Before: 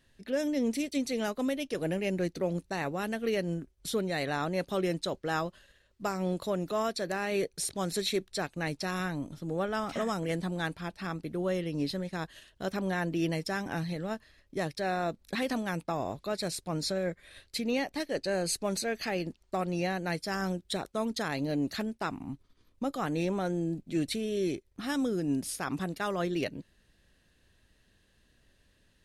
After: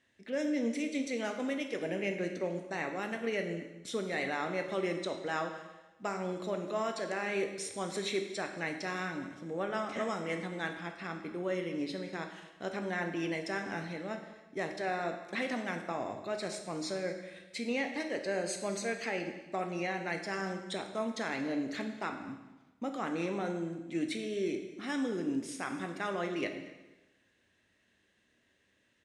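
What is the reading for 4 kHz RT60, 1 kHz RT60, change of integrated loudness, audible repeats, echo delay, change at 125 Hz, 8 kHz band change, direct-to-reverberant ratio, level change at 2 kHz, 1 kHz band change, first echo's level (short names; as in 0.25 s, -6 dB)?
1.0 s, 1.1 s, -3.0 dB, 1, 0.233 s, -8.5 dB, -5.5 dB, 4.5 dB, 0.0 dB, -2.5 dB, -20.0 dB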